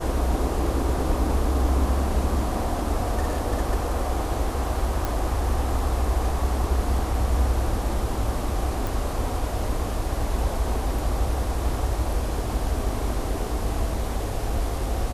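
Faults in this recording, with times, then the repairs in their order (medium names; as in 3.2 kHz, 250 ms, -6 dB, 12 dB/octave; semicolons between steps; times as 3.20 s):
5.05 s: pop
8.87 s: pop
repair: de-click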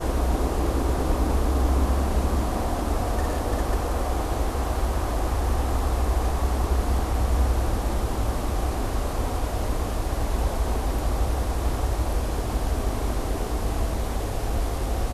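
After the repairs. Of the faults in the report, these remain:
nothing left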